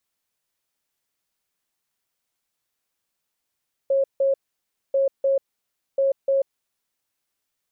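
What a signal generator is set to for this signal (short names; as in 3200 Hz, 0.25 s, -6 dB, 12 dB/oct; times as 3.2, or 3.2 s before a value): beep pattern sine 545 Hz, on 0.14 s, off 0.16 s, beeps 2, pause 0.60 s, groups 3, -16.5 dBFS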